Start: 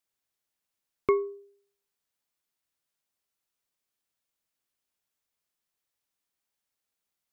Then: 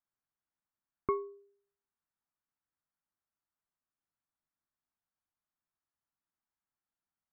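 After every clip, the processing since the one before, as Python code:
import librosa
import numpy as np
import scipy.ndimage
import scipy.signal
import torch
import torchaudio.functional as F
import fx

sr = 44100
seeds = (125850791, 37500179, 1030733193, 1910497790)

y = scipy.signal.sosfilt(scipy.signal.butter(4, 1600.0, 'lowpass', fs=sr, output='sos'), x)
y = fx.peak_eq(y, sr, hz=480.0, db=-12.5, octaves=0.63)
y = F.gain(torch.from_numpy(y), -2.0).numpy()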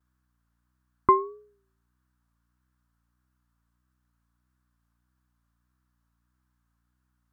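y = fx.add_hum(x, sr, base_hz=60, snr_db=34)
y = fx.vibrato(y, sr, rate_hz=1.6, depth_cents=81.0)
y = fx.band_shelf(y, sr, hz=1300.0, db=9.0, octaves=1.0)
y = F.gain(torch.from_numpy(y), 7.5).numpy()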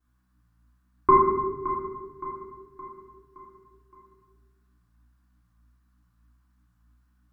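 y = fx.echo_feedback(x, sr, ms=568, feedback_pct=48, wet_db=-12)
y = fx.room_shoebox(y, sr, seeds[0], volume_m3=690.0, walls='mixed', distance_m=3.4)
y = F.gain(torch.from_numpy(y), -3.5).numpy()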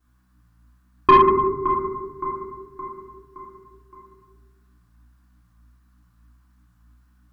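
y = 10.0 ** (-12.5 / 20.0) * np.tanh(x / 10.0 ** (-12.5 / 20.0))
y = F.gain(torch.from_numpy(y), 7.5).numpy()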